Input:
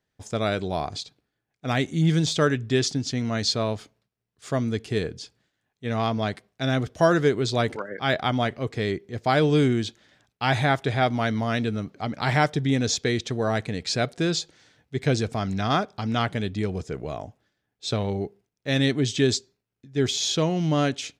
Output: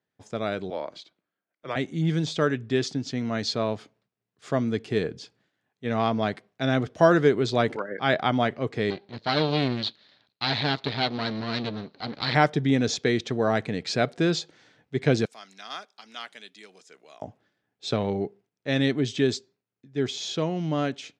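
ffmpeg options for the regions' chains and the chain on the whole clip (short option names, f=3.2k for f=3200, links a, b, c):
-filter_complex "[0:a]asettb=1/sr,asplit=3[a][b][c];[a]atrim=end=0.704[d];[b]atrim=start=0.7:end=1.76,asetpts=PTS-STARTPTS,afade=t=in:d=0.004:c=qsin,afade=t=out:st=1.056:d=0.004:c=qsin,bass=f=250:g=-15,treble=f=4k:g=-6,afreqshift=-120[e];[c]atrim=start=1.756[f];[d][e]acrossfade=d=0.004:c1=hsin:c2=qsin[g];[g][f]acrossfade=d=0.004:c1=qsin:c2=hsin,asettb=1/sr,asplit=3[h][i][j];[h]atrim=end=8.904[k];[i]atrim=start=8.9:end=12.35,asetpts=PTS-STARTPTS,afade=t=in:d=0.004:c=qsin,afade=t=out:st=3.446:d=0.004:c=qsin,bandreject=f=350:w=6.6,aeval=exprs='max(val(0),0)':c=same,lowpass=f=4.2k:t=q:w=8.4[l];[j]atrim=start=12.346[m];[k][l]acrossfade=d=0.004:c1=hsin:c2=qsin[n];[n][m]acrossfade=d=0.004:c1=qsin:c2=hsin,asettb=1/sr,asplit=3[o][p][q];[o]atrim=end=15.254[r];[p]atrim=start=15.25:end=17.22,asetpts=PTS-STARTPTS,afade=t=in:d=0.004:c=qsin,afade=t=out:st=1.966:d=0.004:c=qsin,highpass=f=160:w=0.5412,highpass=f=160:w=1.3066,aderivative[s];[q]atrim=start=17.216[t];[r][s]acrossfade=d=0.004:c1=hsin:c2=qsin[u];[u][t]acrossfade=d=0.004:c1=qsin:c2=hsin,highpass=140,aemphasis=mode=reproduction:type=50fm,dynaudnorm=f=330:g=21:m=11.5dB,volume=-3.5dB"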